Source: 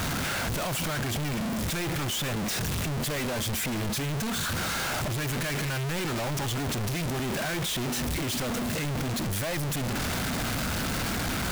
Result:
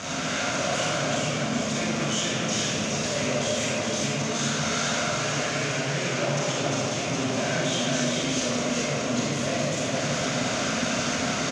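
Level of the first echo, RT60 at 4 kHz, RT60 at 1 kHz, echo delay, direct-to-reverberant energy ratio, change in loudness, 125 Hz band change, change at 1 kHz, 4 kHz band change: -3.5 dB, 1.1 s, 1.6 s, 418 ms, -8.5 dB, +3.5 dB, -1.0 dB, +4.0 dB, +4.5 dB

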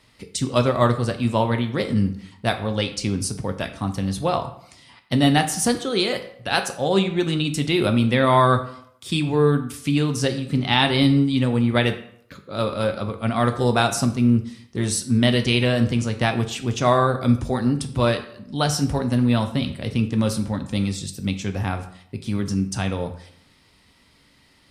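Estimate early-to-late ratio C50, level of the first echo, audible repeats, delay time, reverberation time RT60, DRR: 11.5 dB, no echo, no echo, no echo, 0.70 s, 6.5 dB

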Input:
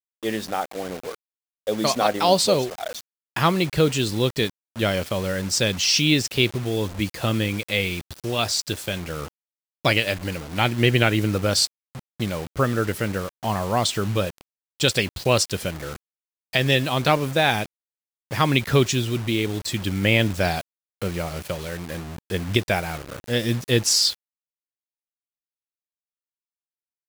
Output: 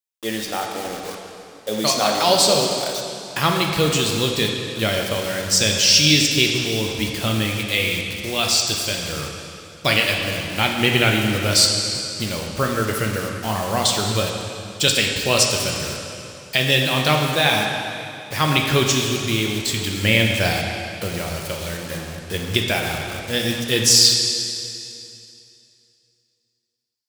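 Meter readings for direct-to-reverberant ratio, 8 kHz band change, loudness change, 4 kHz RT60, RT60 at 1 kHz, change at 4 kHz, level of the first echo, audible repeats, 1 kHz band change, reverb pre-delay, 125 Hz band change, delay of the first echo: 0.5 dB, +7.5 dB, +3.5 dB, 2.5 s, 2.7 s, +6.5 dB, no echo, no echo, +2.0 dB, 4 ms, +0.5 dB, no echo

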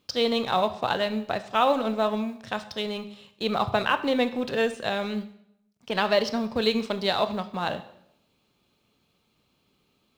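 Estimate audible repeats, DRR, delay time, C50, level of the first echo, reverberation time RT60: no echo, 11.0 dB, no echo, 14.0 dB, no echo, 0.75 s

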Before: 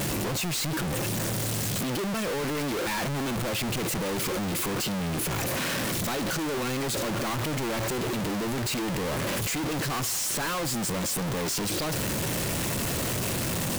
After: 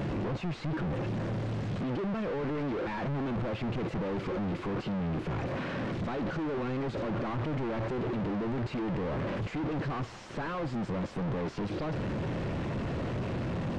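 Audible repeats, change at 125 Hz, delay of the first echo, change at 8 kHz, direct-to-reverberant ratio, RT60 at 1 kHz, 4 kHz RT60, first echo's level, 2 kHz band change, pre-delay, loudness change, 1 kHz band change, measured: no echo, -1.5 dB, no echo, under -25 dB, no reverb, no reverb, no reverb, no echo, -9.0 dB, no reverb, -5.5 dB, -5.0 dB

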